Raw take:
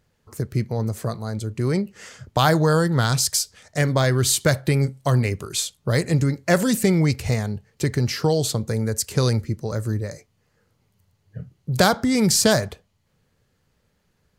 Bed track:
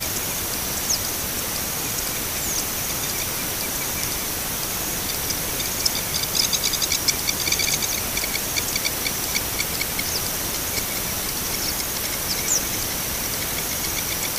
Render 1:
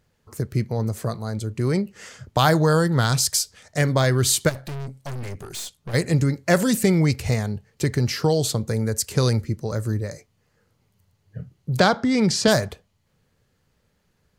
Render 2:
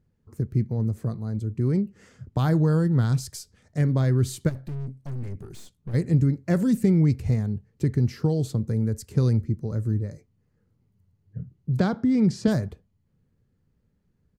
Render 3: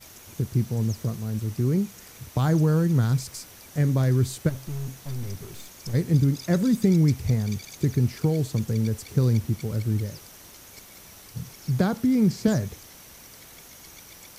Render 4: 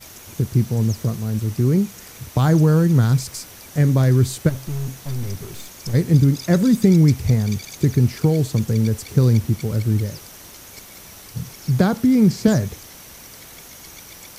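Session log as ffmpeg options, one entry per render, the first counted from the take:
-filter_complex "[0:a]asplit=3[a][b][c];[a]afade=t=out:st=4.48:d=0.02[d];[b]aeval=exprs='(tanh(31.6*val(0)+0.45)-tanh(0.45))/31.6':c=same,afade=t=in:st=4.48:d=0.02,afade=t=out:st=5.93:d=0.02[e];[c]afade=t=in:st=5.93:d=0.02[f];[d][e][f]amix=inputs=3:normalize=0,asettb=1/sr,asplit=3[g][h][i];[g]atrim=end=11.794[j];[h]atrim=start=11.79:end=12.48,asetpts=PTS-STARTPTS,afade=t=in:d=0.004:c=qsin,afade=t=out:st=0.686:d=0.004:c=qsin,highpass=120,lowpass=4.9k[k];[i]atrim=start=12.476[l];[j][k]acrossfade=d=0.004:c1=hsin:c2=qsin[m];[m][l]acrossfade=d=0.004:c1=qsin:c2=hsin"
-af "firequalizer=gain_entry='entry(250,0);entry(600,-12);entry(2000,-14);entry(3000,-17)':delay=0.05:min_phase=1"
-filter_complex "[1:a]volume=-21.5dB[a];[0:a][a]amix=inputs=2:normalize=0"
-af "volume=6dB"

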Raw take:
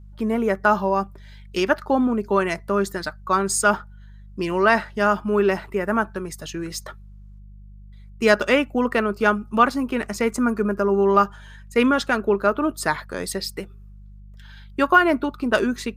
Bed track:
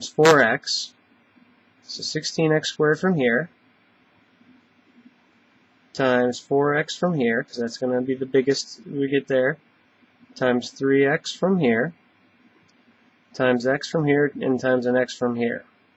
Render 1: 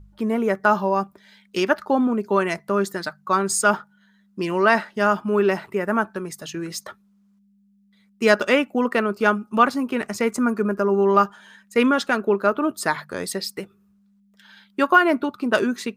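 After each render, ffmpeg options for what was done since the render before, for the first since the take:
-af "bandreject=f=50:t=h:w=4,bandreject=f=100:t=h:w=4,bandreject=f=150:t=h:w=4"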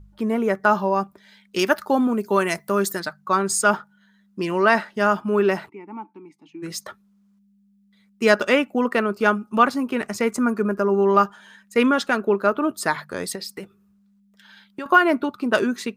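-filter_complex "[0:a]asettb=1/sr,asplit=3[a][b][c];[a]atrim=end=1.594[d];[b]atrim=start=1.59:end=3,asetpts=PTS-STARTPTS,afade=t=in:d=0.004:c=qsin,afade=t=out:st=1.406:d=0.004:c=qsin,aemphasis=mode=production:type=50kf[e];[c]atrim=start=2.996[f];[d][e]acrossfade=d=0.004:c1=hsin:c2=qsin[g];[g][f]acrossfade=d=0.004:c1=qsin:c2=hsin,asplit=3[h][i][j];[h]afade=t=out:st=5.68:d=0.02[k];[i]asplit=3[l][m][n];[l]bandpass=f=300:t=q:w=8,volume=0dB[o];[m]bandpass=f=870:t=q:w=8,volume=-6dB[p];[n]bandpass=f=2.24k:t=q:w=8,volume=-9dB[q];[o][p][q]amix=inputs=3:normalize=0,afade=t=in:st=5.68:d=0.02,afade=t=out:st=6.62:d=0.02[r];[j]afade=t=in:st=6.62:d=0.02[s];[k][r][s]amix=inputs=3:normalize=0,asettb=1/sr,asplit=3[t][u][v];[t]atrim=end=13.354[w];[u]atrim=start=13.35:end=14.86,asetpts=PTS-STARTPTS,afade=t=in:d=0.004:c=qsin,afade=t=out:st=1.506:d=0.004:c=qsin,acompressor=threshold=-28dB:ratio=6:attack=3.2:release=140:knee=1:detection=peak[x];[v]atrim=start=14.856[y];[w][x]acrossfade=d=0.004:c1=hsin:c2=qsin[z];[z][y]acrossfade=d=0.004:c1=qsin:c2=hsin"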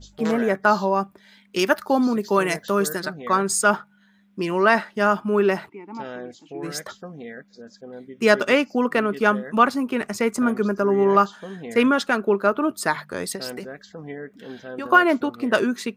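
-filter_complex "[1:a]volume=-16dB[a];[0:a][a]amix=inputs=2:normalize=0"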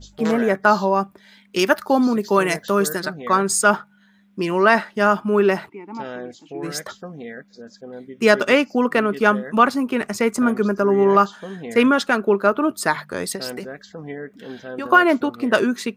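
-af "volume=2.5dB,alimiter=limit=-2dB:level=0:latency=1"

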